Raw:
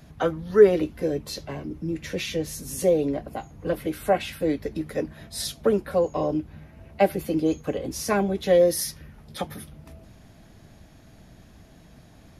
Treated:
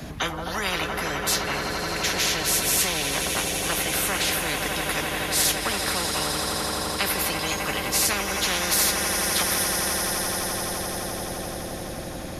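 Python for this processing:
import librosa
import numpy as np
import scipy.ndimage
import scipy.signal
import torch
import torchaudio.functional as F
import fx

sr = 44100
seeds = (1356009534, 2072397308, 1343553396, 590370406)

y = fx.echo_swell(x, sr, ms=85, loudest=8, wet_db=-17.5)
y = fx.spectral_comp(y, sr, ratio=10.0)
y = y * 10.0 ** (-4.0 / 20.0)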